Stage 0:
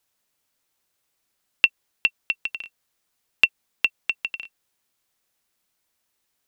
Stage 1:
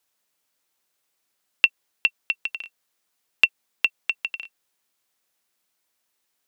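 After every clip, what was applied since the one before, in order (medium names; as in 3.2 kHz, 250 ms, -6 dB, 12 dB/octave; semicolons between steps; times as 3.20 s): bass shelf 120 Hz -12 dB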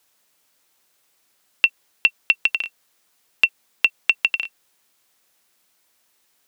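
loudness maximiser +11 dB; trim -1 dB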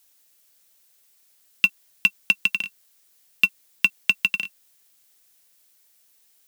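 bass shelf 480 Hz -12 dB; in parallel at -9.5 dB: sample-and-hold 35×; on the sum: tilt EQ +3 dB/octave; trim -6 dB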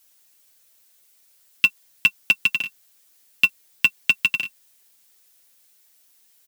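comb 7.5 ms, depth 77%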